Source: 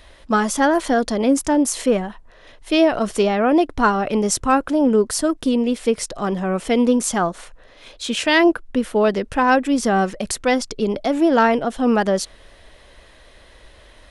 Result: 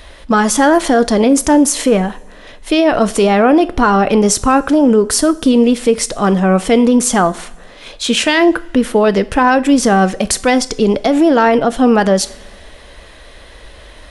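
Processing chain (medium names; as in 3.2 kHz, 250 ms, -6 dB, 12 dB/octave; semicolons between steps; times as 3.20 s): peak limiter -12 dBFS, peak gain reduction 8 dB; two-slope reverb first 0.43 s, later 2 s, from -19 dB, DRR 13.5 dB; trim +9 dB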